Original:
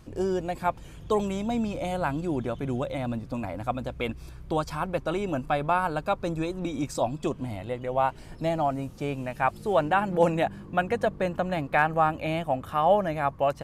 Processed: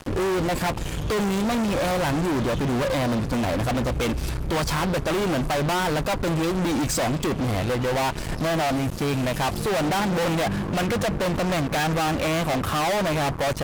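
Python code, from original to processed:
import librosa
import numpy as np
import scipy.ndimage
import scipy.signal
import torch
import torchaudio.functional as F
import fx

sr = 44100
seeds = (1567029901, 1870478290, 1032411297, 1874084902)

y = fx.fuzz(x, sr, gain_db=43.0, gate_db=-48.0)
y = F.gain(torch.from_numpy(y), -8.5).numpy()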